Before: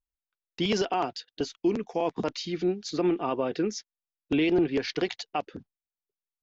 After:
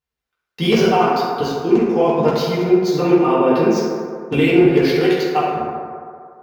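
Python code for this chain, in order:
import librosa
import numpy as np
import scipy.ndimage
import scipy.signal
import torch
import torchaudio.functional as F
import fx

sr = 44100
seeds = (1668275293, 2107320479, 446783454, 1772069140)

y = scipy.ndimage.median_filter(x, 5, mode='constant')
y = scipy.signal.sosfilt(scipy.signal.butter(2, 67.0, 'highpass', fs=sr, output='sos'), y)
y = fx.rev_fdn(y, sr, rt60_s=2.3, lf_ratio=0.7, hf_ratio=0.35, size_ms=39.0, drr_db=-9.5)
y = y * librosa.db_to_amplitude(3.0)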